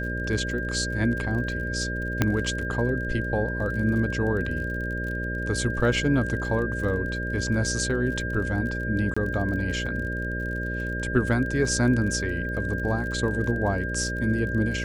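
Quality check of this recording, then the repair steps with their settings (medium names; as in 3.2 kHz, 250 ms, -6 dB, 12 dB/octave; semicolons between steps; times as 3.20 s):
buzz 60 Hz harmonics 10 -31 dBFS
crackle 35 per s -34 dBFS
whine 1.6 kHz -31 dBFS
2.22 s: pop -7 dBFS
9.14–9.16 s: dropout 25 ms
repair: de-click; band-stop 1.6 kHz, Q 30; de-hum 60 Hz, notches 10; interpolate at 9.14 s, 25 ms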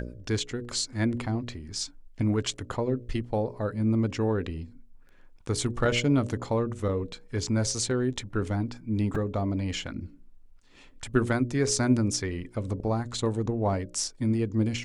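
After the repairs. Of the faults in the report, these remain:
nothing left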